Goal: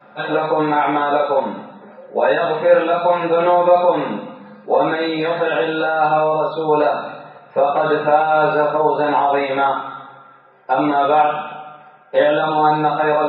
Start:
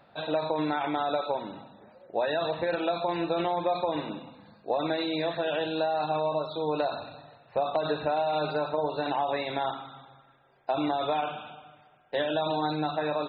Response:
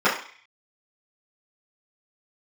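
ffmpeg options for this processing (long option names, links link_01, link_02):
-filter_complex "[1:a]atrim=start_sample=2205,atrim=end_sample=3969[link_01];[0:a][link_01]afir=irnorm=-1:irlink=0,aresample=16000,aresample=44100,volume=-6.5dB"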